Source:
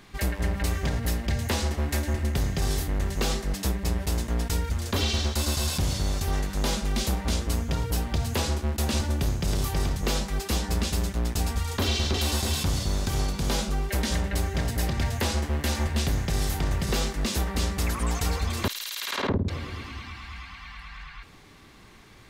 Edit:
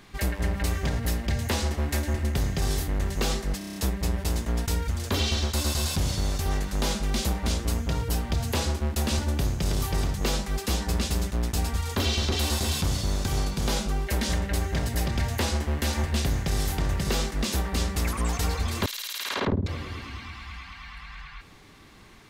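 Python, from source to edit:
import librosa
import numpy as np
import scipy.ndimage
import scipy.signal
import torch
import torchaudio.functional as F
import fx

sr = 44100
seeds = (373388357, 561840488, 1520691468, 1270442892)

y = fx.edit(x, sr, fx.stutter(start_s=3.58, slice_s=0.03, count=7), tone=tone)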